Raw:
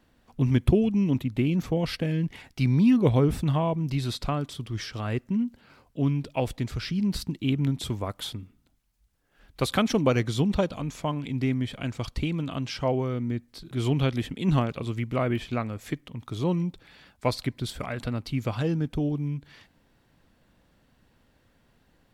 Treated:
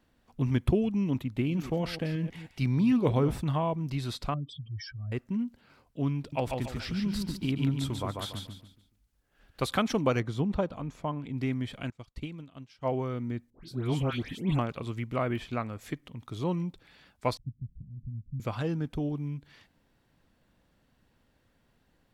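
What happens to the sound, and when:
1.24–3.41 reverse delay 0.153 s, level -13 dB
4.34–5.12 spectral contrast raised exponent 3.2
6.18–9.64 feedback echo 0.143 s, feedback 34%, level -4 dB
10.2–11.37 high shelf 2200 Hz -10.5 dB
11.9–12.92 upward expander 2.5:1, over -38 dBFS
13.5–14.59 dispersion highs, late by 0.134 s, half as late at 1800 Hz
15.69–16.26 upward compressor, threshold -39 dBFS
17.37–18.4 inverse Chebyshev low-pass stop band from 1000 Hz, stop band 80 dB
whole clip: dynamic EQ 1100 Hz, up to +4 dB, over -42 dBFS, Q 0.9; gain -5 dB

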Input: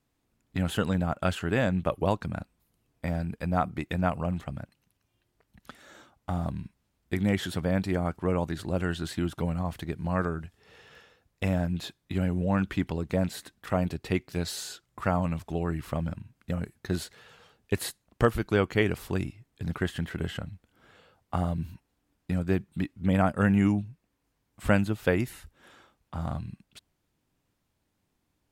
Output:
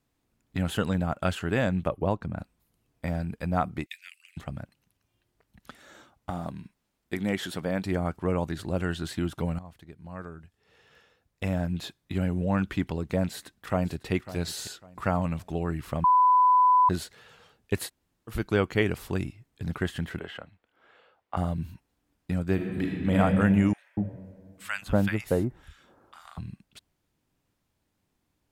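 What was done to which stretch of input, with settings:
1.88–2.39 high shelf 2100 Hz -11.5 dB
3.86–4.37 steep high-pass 2000 Hz 48 dB/oct
6.3–7.85 bell 77 Hz -12 dB 1.6 oct
9.59–11.74 fade in quadratic, from -14.5 dB
13.28–14.12 echo throw 0.55 s, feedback 30%, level -15 dB
16.04–16.89 bleep 1000 Hz -16 dBFS
17.87–18.3 room tone, crossfade 0.06 s
20.19–21.37 three-band isolator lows -17 dB, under 350 Hz, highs -15 dB, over 3700 Hz
22.54–23.19 reverb throw, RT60 2.1 s, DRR -2.5 dB
23.73–26.38 bands offset in time highs, lows 0.24 s, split 1200 Hz

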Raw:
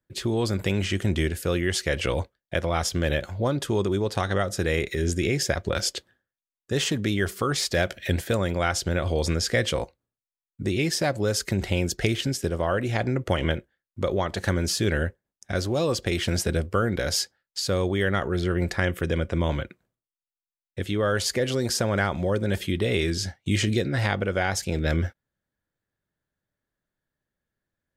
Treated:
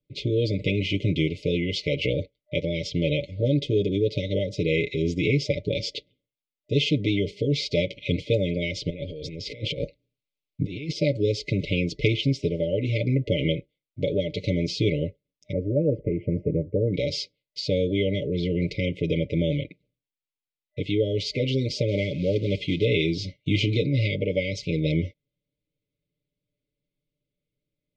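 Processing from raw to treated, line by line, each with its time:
8.9–10.96 negative-ratio compressor -30 dBFS, ratio -0.5
15.52–16.94 inverse Chebyshev low-pass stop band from 3500 Hz, stop band 50 dB
21.88–22.85 short-mantissa float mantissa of 2-bit
whole clip: FFT band-reject 610–2000 Hz; LPF 4300 Hz 24 dB/oct; comb 6.8 ms, depth 80%

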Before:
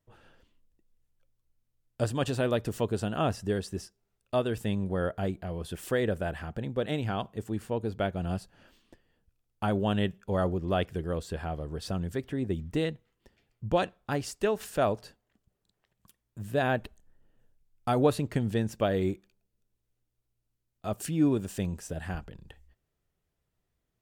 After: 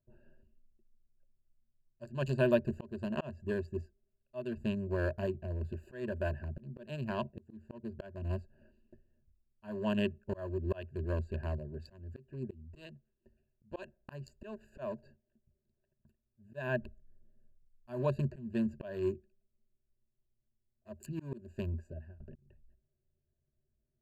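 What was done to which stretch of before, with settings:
11.56–13.79 low shelf 490 Hz -4.5 dB
21.69–22.2 fade out
whole clip: Wiener smoothing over 41 samples; ripple EQ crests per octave 1.4, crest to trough 17 dB; auto swell 0.353 s; gain -4.5 dB

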